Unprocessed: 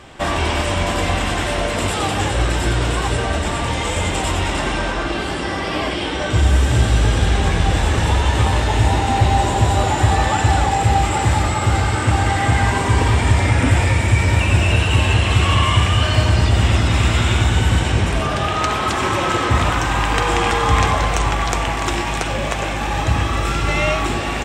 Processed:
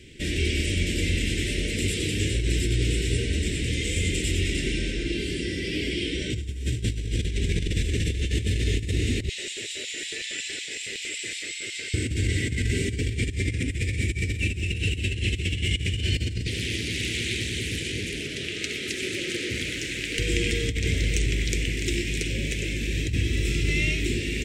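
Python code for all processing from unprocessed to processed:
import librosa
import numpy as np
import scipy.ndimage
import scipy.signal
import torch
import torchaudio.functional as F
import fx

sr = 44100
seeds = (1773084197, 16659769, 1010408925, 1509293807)

y = fx.chain(x, sr, fx.lowpass(hz=8600.0, slope=12),
    fx.filter_lfo_highpass(shape='square', hz=5.4, low_hz=720.0, high_hz=2700.0, q=1.0), at=(9.29, 11.94))
y = fx.chain(y, sr, fx.highpass(hz=430.0, slope=6),
    fx.doppler_dist(depth_ms=0.58), at=(16.47, 20.19))
y = scipy.signal.sosfilt(scipy.signal.cheby1(3, 1.0, [420.0, 2100.0], 'bandstop', fs=sr, output='sos'), y)
y = fx.over_compress(y, sr, threshold_db=-18.0, ratio=-0.5)
y = y * librosa.db_to_amplitude(-5.5)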